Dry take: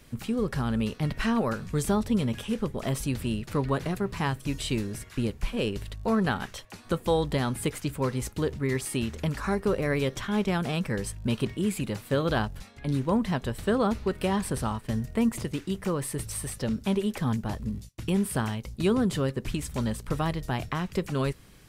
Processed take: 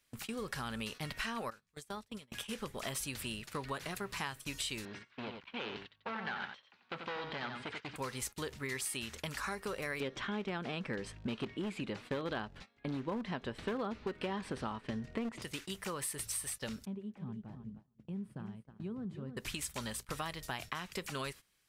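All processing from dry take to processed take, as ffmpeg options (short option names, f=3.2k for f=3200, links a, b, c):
-filter_complex "[0:a]asettb=1/sr,asplit=3[a][b][c];[a]atrim=end=1.504[d];[b]atrim=start=1.5:end=2.32,asetpts=PTS-STARTPTS,afade=t=in:d=0.004:c=qsin,afade=t=out:st=0.816:d=0.004:c=qsin,agate=range=-17dB:threshold=-24dB:ratio=16:release=100:detection=peak,acompressor=threshold=-31dB:ratio=2.5:attack=3.2:release=140:knee=1:detection=peak[e];[c]atrim=start=2.316[f];[d][e]acrossfade=d=0.004:c1=hsin:c2=qsin[g];[g][f]acrossfade=d=0.004:c1=qsin:c2=hsin,asettb=1/sr,asplit=3[h][i][j];[h]atrim=end=4.854[k];[i]atrim=start=4.85:end=7.96,asetpts=PTS-STARTPTS,afade=t=in:d=0.004:c=qsin,afade=t=out:st=3.106:d=0.004:c=qsin,asoftclip=type=hard:threshold=-29.5dB,highpass=120,equalizer=f=240:t=q:w=4:g=3,equalizer=f=930:t=q:w=4:g=4,equalizer=f=1.5k:t=q:w=4:g=3,lowpass=f=3.8k:w=0.5412,lowpass=f=3.8k:w=1.3066,aecho=1:1:89:0.473,atrim=end_sample=137151[l];[j]atrim=start=7.956[m];[k][l]acrossfade=d=0.004:c1=hsin:c2=qsin[n];[n][m]acrossfade=d=0.004:c1=qsin:c2=hsin,asettb=1/sr,asplit=3[o][p][q];[o]atrim=end=10.004[r];[p]atrim=start=10:end=15.42,asetpts=PTS-STARTPTS,afade=t=in:d=0.004:c=qsin,afade=t=out:st=5.416:d=0.004:c=qsin,lowpass=3.6k,equalizer=f=290:t=o:w=2.1:g=10.5,aeval=exprs='clip(val(0),-1,0.188)':c=same[s];[q]atrim=start=15.416[t];[r][s]acrossfade=d=0.004:c1=hsin:c2=qsin[u];[u][t]acrossfade=d=0.004:c1=qsin:c2=hsin,asettb=1/sr,asplit=3[v][w][x];[v]atrim=end=16.854[y];[w]atrim=start=16.85:end=19.37,asetpts=PTS-STARTPTS,afade=t=in:d=0.004:c=qsin,afade=t=out:st=2.516:d=0.004:c=qsin,bandpass=f=170:t=q:w=1.6,aecho=1:1:311|622|933:0.376|0.109|0.0316,atrim=end_sample=111132[z];[x]atrim=start=19.366[aa];[y][z]acrossfade=d=0.004:c1=hsin:c2=qsin[ab];[ab][aa]acrossfade=d=0.004:c1=qsin:c2=hsin,agate=range=-18dB:threshold=-37dB:ratio=16:detection=peak,tiltshelf=f=700:g=-8.5,acompressor=threshold=-30dB:ratio=4,volume=-6dB"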